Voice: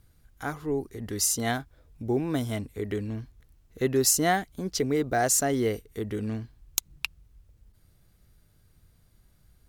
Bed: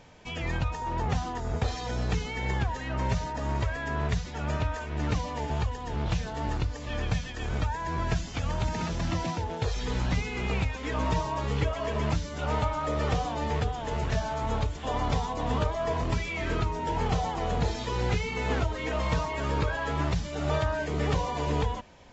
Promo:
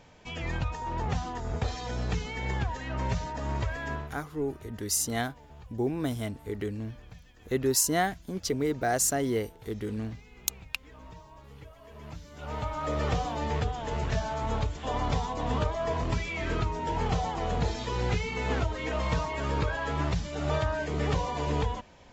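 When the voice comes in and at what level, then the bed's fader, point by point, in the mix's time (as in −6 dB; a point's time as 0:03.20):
3.70 s, −2.5 dB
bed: 0:03.93 −2 dB
0:04.19 −21 dB
0:11.81 −21 dB
0:12.89 −1 dB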